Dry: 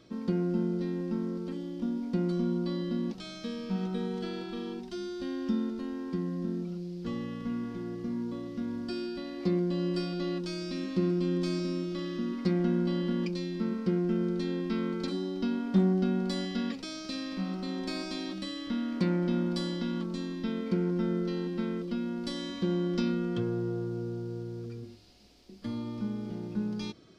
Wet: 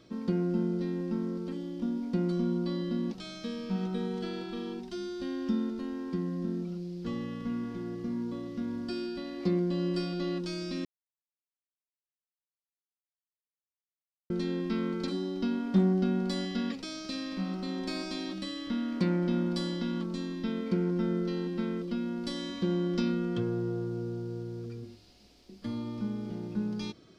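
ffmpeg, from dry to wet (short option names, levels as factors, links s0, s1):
-filter_complex "[0:a]asplit=3[s0][s1][s2];[s0]atrim=end=10.85,asetpts=PTS-STARTPTS,afade=t=out:st=10.846:d=0.004:c=hsin[s3];[s1]atrim=start=10.85:end=14.3,asetpts=PTS-STARTPTS,volume=0[s4];[s2]atrim=start=14.3,asetpts=PTS-STARTPTS,afade=t=in:d=0.004:c=hsin[s5];[s3][s4][s5]concat=n=3:v=0:a=1"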